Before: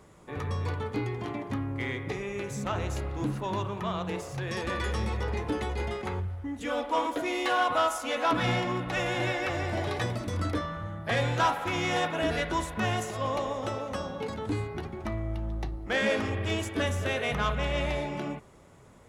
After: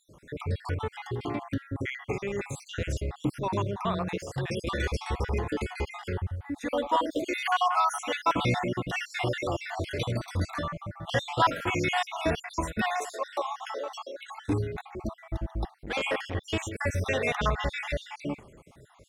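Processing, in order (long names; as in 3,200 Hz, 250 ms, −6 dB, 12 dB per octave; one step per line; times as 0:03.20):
time-frequency cells dropped at random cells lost 55%
0:12.90–0:14.31: elliptic high-pass filter 350 Hz, stop band 80 dB
0:15.79–0:16.35: saturating transformer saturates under 1,100 Hz
level +3.5 dB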